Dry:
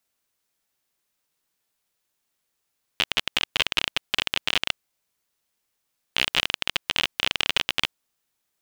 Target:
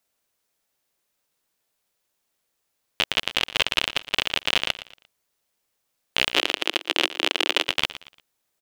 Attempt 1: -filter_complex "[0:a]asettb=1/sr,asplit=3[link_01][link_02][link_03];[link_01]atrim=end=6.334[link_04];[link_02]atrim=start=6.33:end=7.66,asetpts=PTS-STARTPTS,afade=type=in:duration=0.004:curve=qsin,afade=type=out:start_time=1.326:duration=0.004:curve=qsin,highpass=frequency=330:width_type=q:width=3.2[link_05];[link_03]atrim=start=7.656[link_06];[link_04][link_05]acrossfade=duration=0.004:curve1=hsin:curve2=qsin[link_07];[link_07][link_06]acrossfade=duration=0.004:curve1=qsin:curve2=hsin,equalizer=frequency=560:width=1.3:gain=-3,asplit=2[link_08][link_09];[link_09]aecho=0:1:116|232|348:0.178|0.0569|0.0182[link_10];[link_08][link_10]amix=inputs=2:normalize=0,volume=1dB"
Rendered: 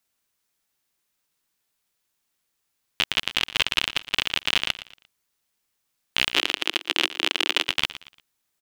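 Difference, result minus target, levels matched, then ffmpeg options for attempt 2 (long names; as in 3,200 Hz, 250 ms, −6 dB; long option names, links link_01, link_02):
500 Hz band −5.0 dB
-filter_complex "[0:a]asettb=1/sr,asplit=3[link_01][link_02][link_03];[link_01]atrim=end=6.334[link_04];[link_02]atrim=start=6.33:end=7.66,asetpts=PTS-STARTPTS,afade=type=in:duration=0.004:curve=qsin,afade=type=out:start_time=1.326:duration=0.004:curve=qsin,highpass=frequency=330:width_type=q:width=3.2[link_05];[link_03]atrim=start=7.656[link_06];[link_04][link_05]acrossfade=duration=0.004:curve1=hsin:curve2=qsin[link_07];[link_07][link_06]acrossfade=duration=0.004:curve1=qsin:curve2=hsin,equalizer=frequency=560:width=1.3:gain=4,asplit=2[link_08][link_09];[link_09]aecho=0:1:116|232|348:0.178|0.0569|0.0182[link_10];[link_08][link_10]amix=inputs=2:normalize=0,volume=1dB"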